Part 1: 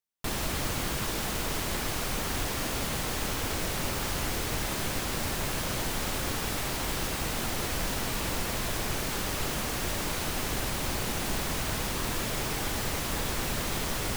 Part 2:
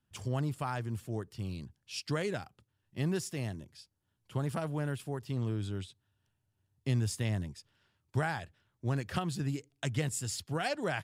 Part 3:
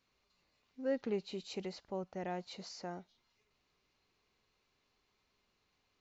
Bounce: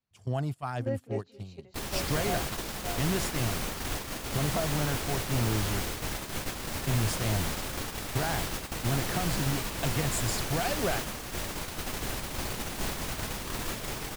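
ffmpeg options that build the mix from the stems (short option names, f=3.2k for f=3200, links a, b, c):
-filter_complex "[0:a]adelay=1500,volume=-1dB[a];[1:a]aphaser=in_gain=1:out_gain=1:delay=1.4:decay=0.23:speed=1.1:type=sinusoidal,volume=2.5dB[b];[2:a]bandreject=f=60:t=h:w=6,bandreject=f=120:t=h:w=6,bandreject=f=180:t=h:w=6,bandreject=f=240:t=h:w=6,bandreject=f=300:t=h:w=6,bandreject=f=360:t=h:w=6,bandreject=f=420:t=h:w=6,aecho=1:1:7.3:0.36,volume=0dB,asplit=2[c][d];[d]volume=-9.5dB[e];[b][c]amix=inputs=2:normalize=0,equalizer=f=690:w=6:g=8,alimiter=limit=-21dB:level=0:latency=1:release=127,volume=0dB[f];[e]aecho=0:1:226|452|678|904|1130|1356|1582:1|0.51|0.26|0.133|0.0677|0.0345|0.0176[g];[a][f][g]amix=inputs=3:normalize=0,agate=range=-16dB:threshold=-31dB:ratio=16:detection=peak"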